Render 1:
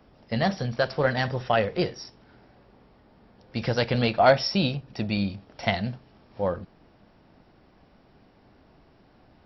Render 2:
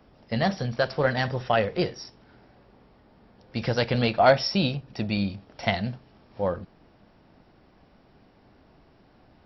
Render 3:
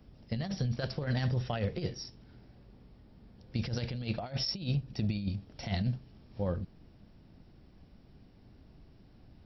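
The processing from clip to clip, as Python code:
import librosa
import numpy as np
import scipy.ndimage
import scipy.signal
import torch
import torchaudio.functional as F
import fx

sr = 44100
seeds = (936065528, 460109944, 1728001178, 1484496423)

y1 = x
y2 = fx.peak_eq(y1, sr, hz=1000.0, db=-11.0, octaves=3.0)
y2 = fx.over_compress(y2, sr, threshold_db=-31.0, ratio=-0.5)
y2 = fx.low_shelf(y2, sr, hz=180.0, db=6.0)
y2 = y2 * 10.0 ** (-3.0 / 20.0)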